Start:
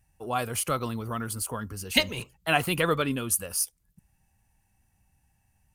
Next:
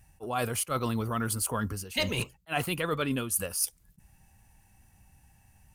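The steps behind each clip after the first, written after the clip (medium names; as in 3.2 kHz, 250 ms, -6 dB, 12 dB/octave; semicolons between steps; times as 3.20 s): reverse; compression 10:1, threshold -35 dBFS, peak gain reduction 19.5 dB; reverse; attacks held to a fixed rise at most 490 dB/s; trim +8.5 dB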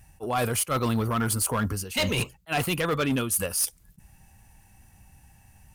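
hard clipper -25.5 dBFS, distortion -13 dB; trim +5.5 dB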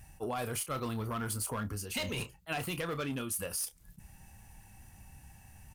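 doubling 29 ms -11 dB; compression 6:1, threshold -34 dBFS, peak gain reduction 12.5 dB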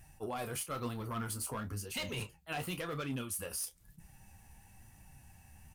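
flange 0.99 Hz, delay 5.5 ms, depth 9.4 ms, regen +48%; trim +1 dB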